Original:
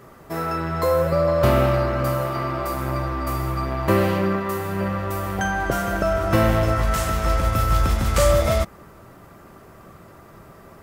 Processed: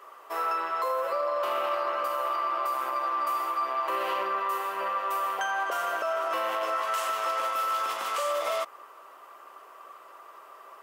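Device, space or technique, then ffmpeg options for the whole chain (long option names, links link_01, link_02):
laptop speaker: -af "highpass=frequency=450:width=0.5412,highpass=frequency=450:width=1.3066,equalizer=frequency=1100:width_type=o:width=0.5:gain=11.5,equalizer=frequency=2900:width_type=o:width=0.45:gain=8,alimiter=limit=-14.5dB:level=0:latency=1:release=53,volume=-6dB"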